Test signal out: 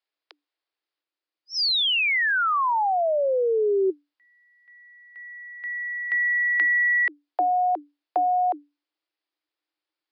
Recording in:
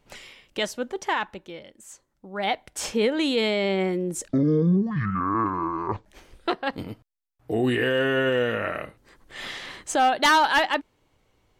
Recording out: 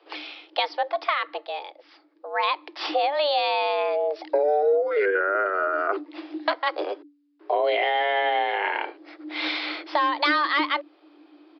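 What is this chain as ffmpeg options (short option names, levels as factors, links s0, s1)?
-filter_complex "[0:a]asubboost=boost=3:cutoff=53,acrossover=split=110[s0][s1];[s1]acompressor=threshold=0.0398:ratio=6[s2];[s0][s2]amix=inputs=2:normalize=0,afreqshift=290,aresample=11025,aresample=44100,volume=2.37"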